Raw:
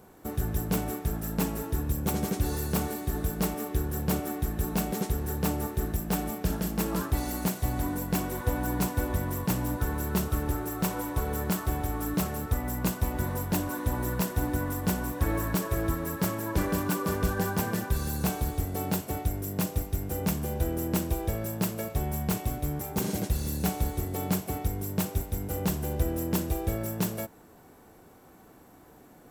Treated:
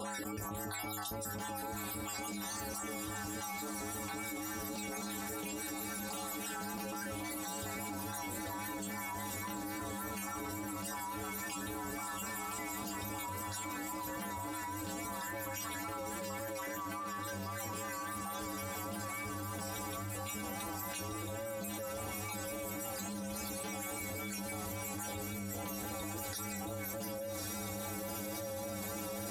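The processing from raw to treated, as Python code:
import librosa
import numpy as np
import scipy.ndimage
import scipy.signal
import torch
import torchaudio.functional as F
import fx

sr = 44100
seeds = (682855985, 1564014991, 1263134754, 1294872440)

y = fx.spec_dropout(x, sr, seeds[0], share_pct=56)
y = scipy.signal.sosfilt(scipy.signal.butter(2, 10000.0, 'lowpass', fs=sr, output='sos'), y)
y = y + 0.46 * np.pad(y, (int(3.7 * sr / 1000.0), 0))[:len(y)]
y = np.clip(y, -10.0 ** (-29.0 / 20.0), 10.0 ** (-29.0 / 20.0))
y = scipy.signal.sosfilt(scipy.signal.butter(2, 57.0, 'highpass', fs=sr, output='sos'), y)
y = fx.low_shelf(y, sr, hz=440.0, db=-10.0)
y = fx.stiff_resonator(y, sr, f0_hz=100.0, decay_s=0.54, stiffness=0.008)
y = fx.echo_diffused(y, sr, ms=1160, feedback_pct=67, wet_db=-7.0)
y = fx.vibrato(y, sr, rate_hz=3.6, depth_cents=30.0)
y = fx.env_flatten(y, sr, amount_pct=100)
y = y * librosa.db_to_amplitude(4.0)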